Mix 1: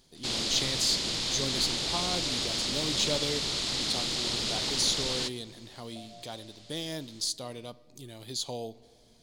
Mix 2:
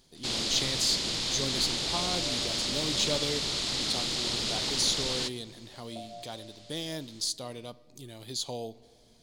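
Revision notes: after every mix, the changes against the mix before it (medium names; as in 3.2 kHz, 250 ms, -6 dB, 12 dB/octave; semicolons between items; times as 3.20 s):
second sound +6.5 dB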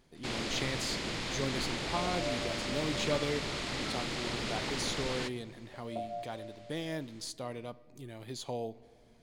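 second sound +5.0 dB; master: add resonant high shelf 2.9 kHz -9 dB, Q 1.5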